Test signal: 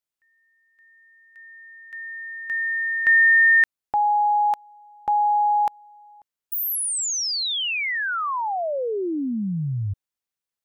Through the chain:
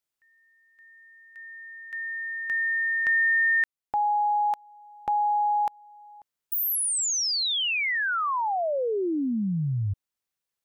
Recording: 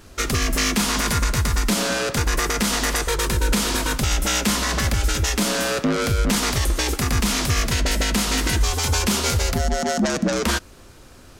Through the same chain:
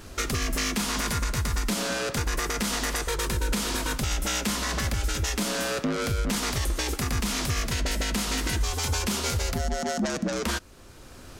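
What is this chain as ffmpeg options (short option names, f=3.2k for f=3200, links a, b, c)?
-af "acompressor=threshold=-27dB:ratio=2.5:attack=2.6:release=830:knee=6:detection=rms,volume=2dB"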